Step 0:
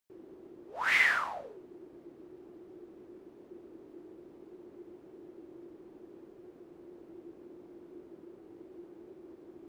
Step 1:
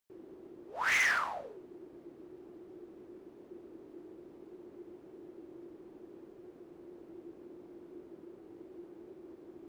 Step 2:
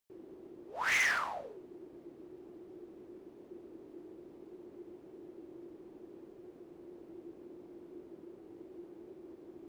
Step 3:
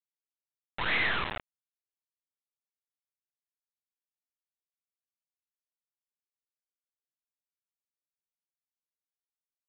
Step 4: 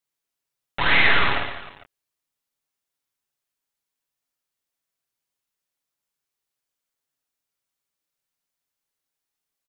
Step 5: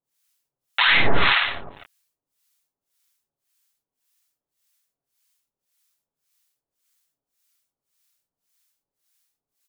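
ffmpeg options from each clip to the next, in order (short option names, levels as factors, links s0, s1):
-af "asoftclip=type=hard:threshold=0.0596"
-af "equalizer=f=1400:w=1.5:g=-2.5"
-af "aeval=exprs='0.0668*(cos(1*acos(clip(val(0)/0.0668,-1,1)))-cos(1*PI/2))+0.0188*(cos(6*acos(clip(val(0)/0.0668,-1,1)))-cos(6*PI/2))':c=same,aresample=8000,acrusher=bits=4:mix=0:aa=0.000001,aresample=44100"
-af "aecho=1:1:7.2:0.35,aecho=1:1:50|115|199.5|309.4|452.2:0.631|0.398|0.251|0.158|0.1,volume=2.66"
-filter_complex "[0:a]acrossover=split=890[s0][s1];[s0]aeval=exprs='val(0)*(1-1/2+1/2*cos(2*PI*1.8*n/s))':c=same[s2];[s1]aeval=exprs='val(0)*(1-1/2-1/2*cos(2*PI*1.8*n/s))':c=same[s3];[s2][s3]amix=inputs=2:normalize=0,highshelf=f=3000:g=9,alimiter=limit=0.2:level=0:latency=1:release=129,volume=2.24"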